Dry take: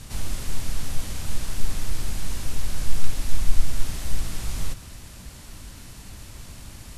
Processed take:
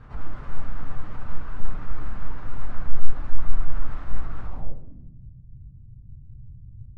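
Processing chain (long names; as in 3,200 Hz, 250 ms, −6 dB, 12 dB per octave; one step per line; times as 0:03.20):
spectral magnitudes quantised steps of 15 dB
low-pass filter sweep 1,300 Hz → 120 Hz, 0:04.43–0:05.20
rectangular room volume 330 cubic metres, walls mixed, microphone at 0.39 metres
level −4.5 dB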